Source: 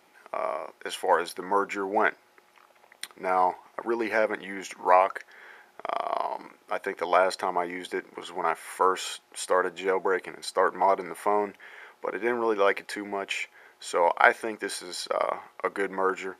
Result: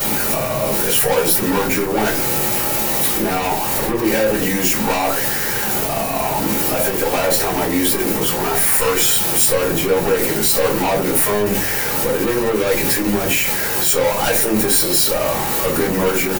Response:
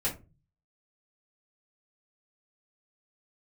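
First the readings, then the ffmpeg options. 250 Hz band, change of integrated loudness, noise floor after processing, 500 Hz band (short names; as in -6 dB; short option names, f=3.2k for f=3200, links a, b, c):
+16.0 dB, +12.0 dB, -21 dBFS, +9.0 dB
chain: -filter_complex "[0:a]aeval=exprs='val(0)+0.5*0.0473*sgn(val(0))':c=same,equalizer=f=150:w=0.33:g=12.5,aeval=exprs='(tanh(11.2*val(0)+0.2)-tanh(0.2))/11.2':c=same,aemphasis=mode=production:type=75fm,asplit=2[a][b];[b]adelay=19,volume=-14dB[c];[a][c]amix=inputs=2:normalize=0[d];[1:a]atrim=start_sample=2205[e];[d][e]afir=irnorm=-1:irlink=0,volume=-1dB"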